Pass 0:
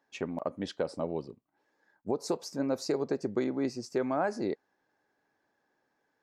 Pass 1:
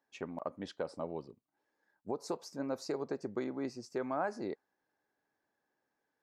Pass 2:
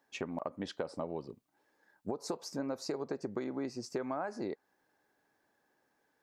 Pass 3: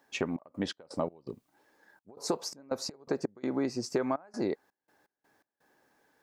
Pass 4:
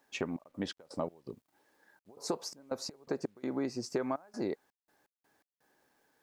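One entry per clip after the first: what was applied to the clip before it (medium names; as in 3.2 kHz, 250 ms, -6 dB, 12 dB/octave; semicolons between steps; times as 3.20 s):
dynamic bell 1.1 kHz, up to +5 dB, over -46 dBFS, Q 0.99; trim -7.5 dB
compression 5:1, threshold -42 dBFS, peak gain reduction 11.5 dB; trim +8 dB
trance gate "xx.x.x.xxxx." 83 bpm -24 dB; trim +7 dB
word length cut 12-bit, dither none; trim -3.5 dB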